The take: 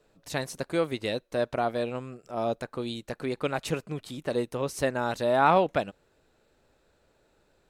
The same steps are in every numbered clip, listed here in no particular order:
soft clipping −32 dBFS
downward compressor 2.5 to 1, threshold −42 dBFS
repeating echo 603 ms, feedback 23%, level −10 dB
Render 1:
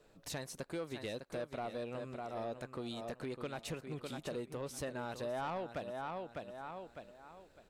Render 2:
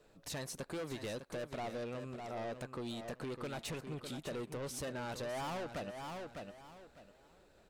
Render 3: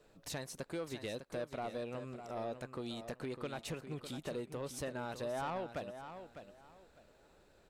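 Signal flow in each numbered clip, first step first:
repeating echo, then downward compressor, then soft clipping
soft clipping, then repeating echo, then downward compressor
downward compressor, then soft clipping, then repeating echo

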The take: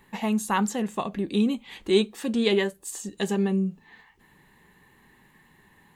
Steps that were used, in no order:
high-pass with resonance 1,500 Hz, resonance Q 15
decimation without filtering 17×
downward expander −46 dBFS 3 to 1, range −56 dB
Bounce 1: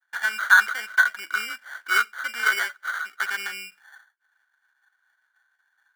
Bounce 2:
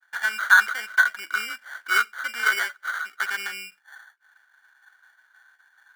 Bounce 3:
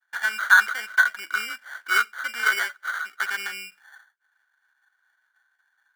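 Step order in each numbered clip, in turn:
decimation without filtering, then downward expander, then high-pass with resonance
decimation without filtering, then high-pass with resonance, then downward expander
downward expander, then decimation without filtering, then high-pass with resonance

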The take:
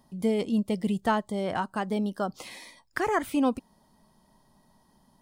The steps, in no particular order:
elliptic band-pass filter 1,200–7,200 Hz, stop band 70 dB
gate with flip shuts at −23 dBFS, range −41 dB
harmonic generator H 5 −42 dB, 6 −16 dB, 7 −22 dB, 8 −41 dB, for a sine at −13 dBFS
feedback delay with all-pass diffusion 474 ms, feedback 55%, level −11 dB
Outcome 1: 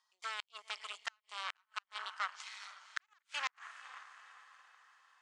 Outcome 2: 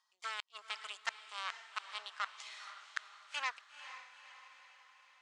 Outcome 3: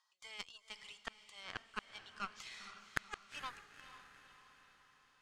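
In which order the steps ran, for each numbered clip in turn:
feedback delay with all-pass diffusion, then harmonic generator, then elliptic band-pass filter, then gate with flip
harmonic generator, then elliptic band-pass filter, then gate with flip, then feedback delay with all-pass diffusion
elliptic band-pass filter, then harmonic generator, then gate with flip, then feedback delay with all-pass diffusion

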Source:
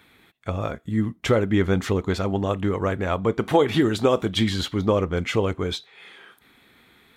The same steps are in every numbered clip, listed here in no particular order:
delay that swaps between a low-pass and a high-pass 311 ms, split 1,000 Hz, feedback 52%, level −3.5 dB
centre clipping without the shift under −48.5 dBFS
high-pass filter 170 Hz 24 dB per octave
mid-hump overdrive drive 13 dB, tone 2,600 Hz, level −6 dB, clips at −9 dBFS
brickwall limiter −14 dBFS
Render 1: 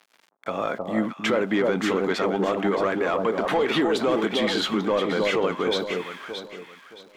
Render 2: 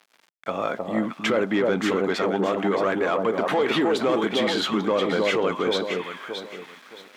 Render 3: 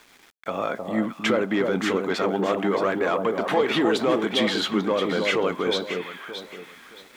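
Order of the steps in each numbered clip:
centre clipping without the shift, then high-pass filter, then mid-hump overdrive, then delay that swaps between a low-pass and a high-pass, then brickwall limiter
delay that swaps between a low-pass and a high-pass, then centre clipping without the shift, then mid-hump overdrive, then brickwall limiter, then high-pass filter
mid-hump overdrive, then high-pass filter, then brickwall limiter, then delay that swaps between a low-pass and a high-pass, then centre clipping without the shift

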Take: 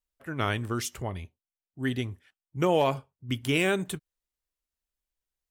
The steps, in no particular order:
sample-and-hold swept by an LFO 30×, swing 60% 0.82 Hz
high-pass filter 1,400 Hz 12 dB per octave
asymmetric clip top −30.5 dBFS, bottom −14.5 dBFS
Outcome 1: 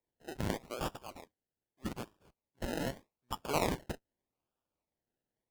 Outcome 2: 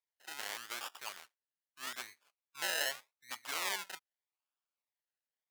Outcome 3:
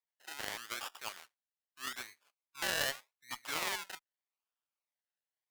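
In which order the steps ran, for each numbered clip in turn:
high-pass filter, then sample-and-hold swept by an LFO, then asymmetric clip
sample-and-hold swept by an LFO, then asymmetric clip, then high-pass filter
sample-and-hold swept by an LFO, then high-pass filter, then asymmetric clip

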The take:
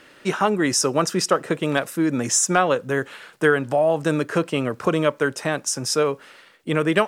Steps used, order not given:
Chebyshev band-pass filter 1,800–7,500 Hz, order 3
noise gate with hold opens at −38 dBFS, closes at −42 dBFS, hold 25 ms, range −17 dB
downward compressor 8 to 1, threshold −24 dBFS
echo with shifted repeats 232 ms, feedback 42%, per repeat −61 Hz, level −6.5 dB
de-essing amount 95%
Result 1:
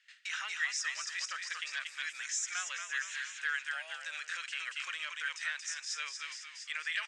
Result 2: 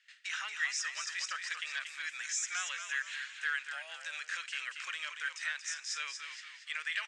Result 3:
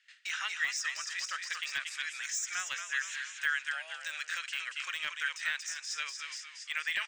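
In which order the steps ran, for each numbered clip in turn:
noise gate with hold, then echo with shifted repeats, then de-essing, then Chebyshev band-pass filter, then downward compressor
de-essing, then echo with shifted repeats, then noise gate with hold, then Chebyshev band-pass filter, then downward compressor
noise gate with hold, then echo with shifted repeats, then Chebyshev band-pass filter, then de-essing, then downward compressor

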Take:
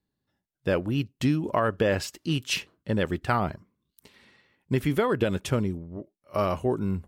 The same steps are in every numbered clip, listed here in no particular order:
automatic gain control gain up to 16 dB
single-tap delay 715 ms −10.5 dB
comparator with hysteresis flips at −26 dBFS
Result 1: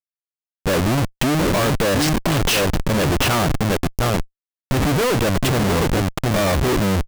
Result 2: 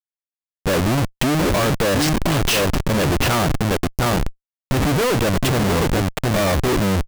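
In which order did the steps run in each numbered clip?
automatic gain control, then single-tap delay, then comparator with hysteresis
single-tap delay, then automatic gain control, then comparator with hysteresis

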